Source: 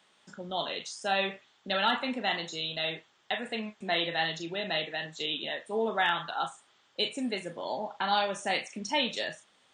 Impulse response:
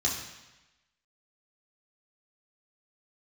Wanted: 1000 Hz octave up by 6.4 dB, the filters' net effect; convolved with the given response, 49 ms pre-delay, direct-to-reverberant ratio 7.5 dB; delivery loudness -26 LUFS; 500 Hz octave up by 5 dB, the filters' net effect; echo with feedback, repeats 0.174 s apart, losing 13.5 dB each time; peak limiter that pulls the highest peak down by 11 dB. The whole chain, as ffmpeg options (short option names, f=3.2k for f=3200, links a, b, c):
-filter_complex "[0:a]equalizer=f=500:t=o:g=4,equalizer=f=1k:t=o:g=7,alimiter=limit=-21dB:level=0:latency=1,aecho=1:1:174|348:0.211|0.0444,asplit=2[a][b];[1:a]atrim=start_sample=2205,adelay=49[c];[b][c]afir=irnorm=-1:irlink=0,volume=-15.5dB[d];[a][d]amix=inputs=2:normalize=0,volume=5.5dB"